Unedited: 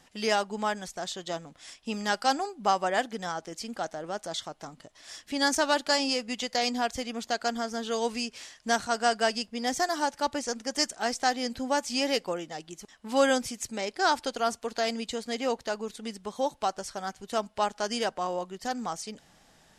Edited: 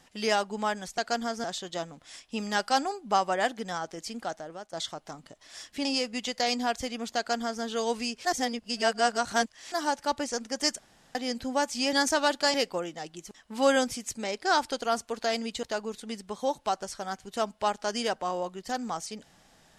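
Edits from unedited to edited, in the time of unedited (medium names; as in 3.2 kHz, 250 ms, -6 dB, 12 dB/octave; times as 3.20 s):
3.58–4.27 s: fade out equal-power, to -15.5 dB
5.39–6.00 s: move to 12.08 s
7.32–7.78 s: copy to 0.98 s
8.40–9.87 s: reverse
10.94–11.30 s: room tone
15.17–15.59 s: delete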